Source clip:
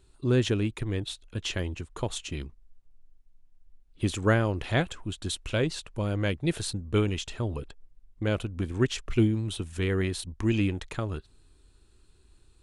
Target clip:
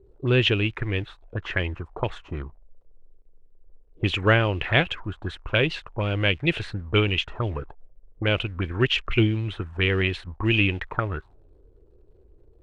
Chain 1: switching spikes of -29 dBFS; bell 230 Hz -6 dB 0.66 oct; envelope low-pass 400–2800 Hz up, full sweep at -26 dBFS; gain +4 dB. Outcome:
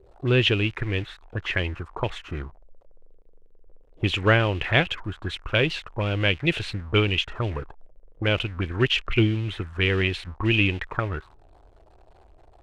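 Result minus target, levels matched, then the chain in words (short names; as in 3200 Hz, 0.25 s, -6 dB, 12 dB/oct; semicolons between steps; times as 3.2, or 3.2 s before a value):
switching spikes: distortion +10 dB
switching spikes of -39.5 dBFS; bell 230 Hz -6 dB 0.66 oct; envelope low-pass 400–2800 Hz up, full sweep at -26 dBFS; gain +4 dB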